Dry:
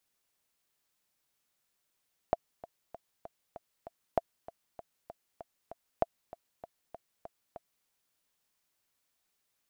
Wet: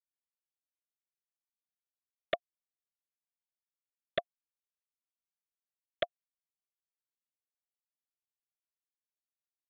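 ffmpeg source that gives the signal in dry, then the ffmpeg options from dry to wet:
-f lavfi -i "aevalsrc='pow(10,(-12.5-18.5*gte(mod(t,6*60/195),60/195))/20)*sin(2*PI*676*mod(t,60/195))*exp(-6.91*mod(t,60/195)/0.03)':d=5.53:s=44100"
-af "highpass=360,aresample=8000,acrusher=bits=3:mix=0:aa=0.000001,aresample=44100,asuperstop=centerf=890:order=20:qfactor=2.1"

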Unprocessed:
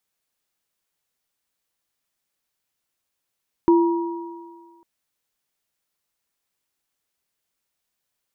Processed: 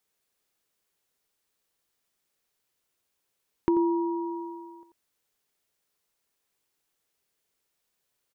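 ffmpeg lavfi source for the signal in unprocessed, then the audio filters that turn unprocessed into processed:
-f lavfi -i "aevalsrc='0.299*pow(10,-3*t/1.57)*sin(2*PI*339*t)+0.1*pow(10,-3*t/1.98)*sin(2*PI*954*t)':d=1.15:s=44100"
-filter_complex "[0:a]equalizer=f=420:t=o:w=0.54:g=5.5,asplit=2[a][b];[b]aecho=0:1:88:0.422[c];[a][c]amix=inputs=2:normalize=0,acompressor=threshold=-30dB:ratio=2"

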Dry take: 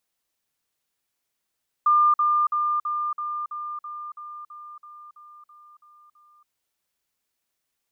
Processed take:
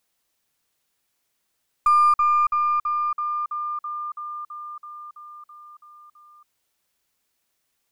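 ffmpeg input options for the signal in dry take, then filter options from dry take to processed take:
-f lavfi -i "aevalsrc='pow(10,(-14.5-3*floor(t/0.33))/20)*sin(2*PI*1200*t)*clip(min(mod(t,0.33),0.28-mod(t,0.33))/0.005,0,1)':d=4.62:s=44100"
-filter_complex "[0:a]asplit=2[a][b];[b]acompressor=threshold=-34dB:ratio=4,volume=-0.5dB[c];[a][c]amix=inputs=2:normalize=0,aeval=exprs='0.237*(cos(1*acos(clip(val(0)/0.237,-1,1)))-cos(1*PI/2))+0.0168*(cos(2*acos(clip(val(0)/0.237,-1,1)))-cos(2*PI/2))+0.0075*(cos(6*acos(clip(val(0)/0.237,-1,1)))-cos(6*PI/2))+0.00531*(cos(8*acos(clip(val(0)/0.237,-1,1)))-cos(8*PI/2))':c=same"

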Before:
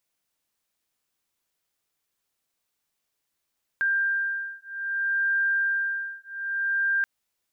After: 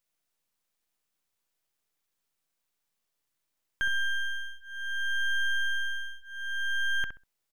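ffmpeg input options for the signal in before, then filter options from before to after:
-f lavfi -i "aevalsrc='0.0473*(sin(2*PI*1590*t)+sin(2*PI*1590.62*t))':d=3.23:s=44100"
-filter_complex "[0:a]aeval=exprs='if(lt(val(0),0),0.251*val(0),val(0))':c=same,asplit=2[a][b];[b]adelay=65,lowpass=f=1.2k:p=1,volume=-6dB,asplit=2[c][d];[d]adelay=65,lowpass=f=1.2k:p=1,volume=0.26,asplit=2[e][f];[f]adelay=65,lowpass=f=1.2k:p=1,volume=0.26[g];[c][e][g]amix=inputs=3:normalize=0[h];[a][h]amix=inputs=2:normalize=0"

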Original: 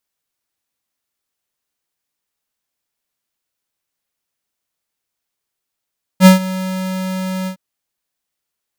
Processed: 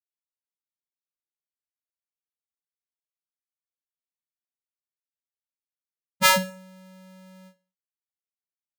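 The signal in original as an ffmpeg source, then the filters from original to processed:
-f lavfi -i "aevalsrc='0.708*(2*lt(mod(187*t,1),0.5)-1)':d=1.362:s=44100,afade=t=in:d=0.058,afade=t=out:st=0.058:d=0.129:silence=0.119,afade=t=out:st=1.27:d=0.092"
-af "agate=range=-33dB:threshold=-8dB:ratio=3:detection=peak,afftfilt=real='re*lt(hypot(re,im),1.26)':imag='im*lt(hypot(re,im),1.26)':win_size=1024:overlap=0.75,aecho=1:1:66|132|198:0.126|0.0453|0.0163"

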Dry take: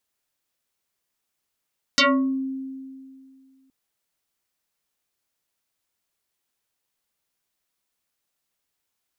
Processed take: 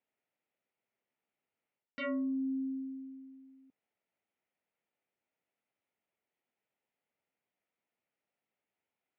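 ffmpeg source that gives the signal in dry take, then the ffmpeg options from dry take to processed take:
-f lavfi -i "aevalsrc='0.224*pow(10,-3*t/2.28)*sin(2*PI*266*t+7.7*pow(10,-3*t/0.42)*sin(2*PI*3.14*266*t))':d=1.72:s=44100"
-af "areverse,acompressor=threshold=-31dB:ratio=10,areverse,highpass=150,equalizer=f=160:t=q:w=4:g=-3,equalizer=f=330:t=q:w=4:g=-3,equalizer=f=1.1k:t=q:w=4:g=-10,equalizer=f=1.6k:t=q:w=4:g=-8,lowpass=f=2.3k:w=0.5412,lowpass=f=2.3k:w=1.3066"

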